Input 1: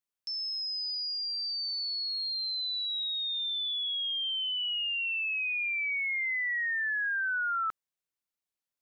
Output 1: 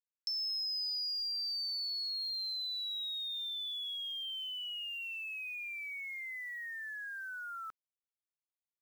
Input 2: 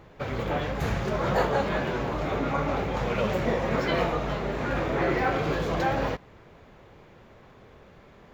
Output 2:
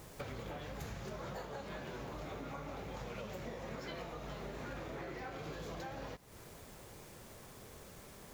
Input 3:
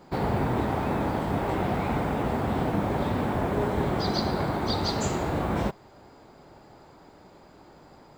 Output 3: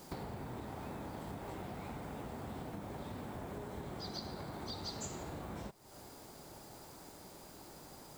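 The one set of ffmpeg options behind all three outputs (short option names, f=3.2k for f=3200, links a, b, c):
-af "acrusher=bits=9:mix=0:aa=0.000001,acompressor=threshold=-38dB:ratio=16,bass=f=250:g=1,treble=f=4k:g=10,volume=-3.5dB"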